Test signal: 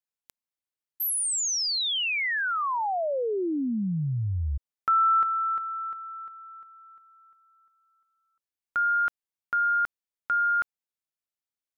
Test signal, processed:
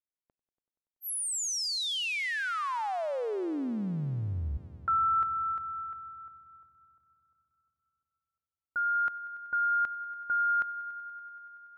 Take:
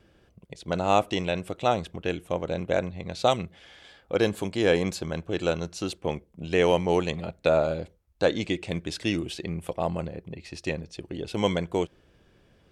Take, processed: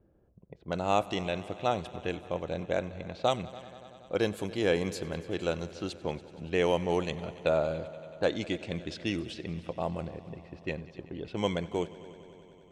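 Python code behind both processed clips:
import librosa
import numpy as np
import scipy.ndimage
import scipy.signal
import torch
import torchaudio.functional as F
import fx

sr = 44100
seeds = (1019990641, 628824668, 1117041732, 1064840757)

y = fx.env_lowpass(x, sr, base_hz=710.0, full_db=-24.5)
y = fx.echo_heads(y, sr, ms=95, heads='all three', feedback_pct=70, wet_db=-23)
y = y * 10.0 ** (-5.0 / 20.0)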